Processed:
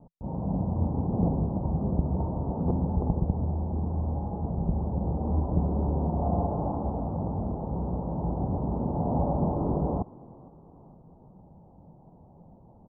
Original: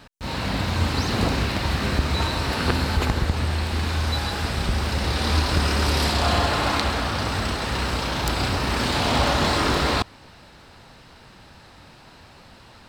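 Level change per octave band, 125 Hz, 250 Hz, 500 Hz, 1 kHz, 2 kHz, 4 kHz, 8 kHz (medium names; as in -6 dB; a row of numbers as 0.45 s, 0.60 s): -3.0 dB, -1.5 dB, -5.0 dB, -9.5 dB, under -40 dB, under -40 dB, under -40 dB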